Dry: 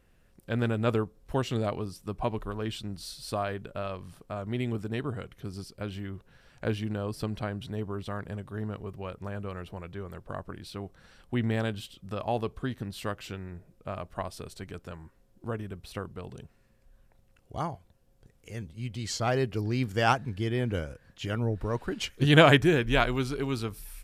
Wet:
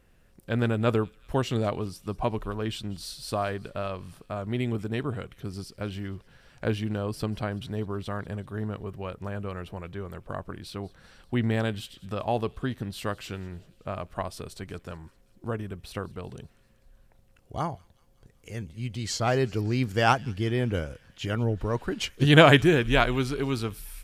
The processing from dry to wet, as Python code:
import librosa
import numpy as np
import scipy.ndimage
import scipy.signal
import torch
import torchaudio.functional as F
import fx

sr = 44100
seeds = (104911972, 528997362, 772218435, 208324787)

y = fx.echo_wet_highpass(x, sr, ms=191, feedback_pct=61, hz=2600.0, wet_db=-20.0)
y = F.gain(torch.from_numpy(y), 2.5).numpy()